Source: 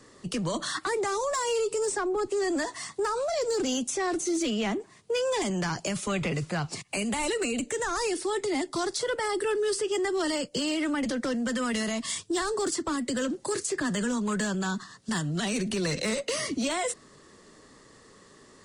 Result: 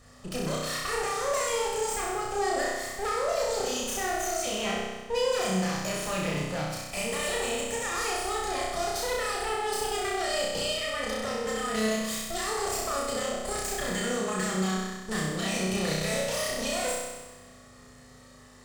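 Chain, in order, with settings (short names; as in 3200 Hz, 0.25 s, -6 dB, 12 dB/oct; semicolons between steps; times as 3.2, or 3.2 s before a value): minimum comb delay 1.6 ms; hum 50 Hz, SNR 21 dB; flutter echo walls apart 5.5 m, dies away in 1.2 s; gain -3 dB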